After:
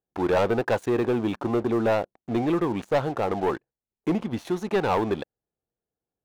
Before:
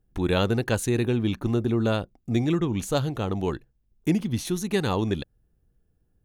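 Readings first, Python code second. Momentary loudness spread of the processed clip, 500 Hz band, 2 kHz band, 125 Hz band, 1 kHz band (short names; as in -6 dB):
6 LU, +3.5 dB, +1.0 dB, -7.0 dB, +6.0 dB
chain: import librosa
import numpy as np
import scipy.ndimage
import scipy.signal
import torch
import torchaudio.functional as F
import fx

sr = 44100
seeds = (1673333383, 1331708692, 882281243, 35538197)

y = fx.bandpass_q(x, sr, hz=770.0, q=1.3)
y = fx.leveller(y, sr, passes=3)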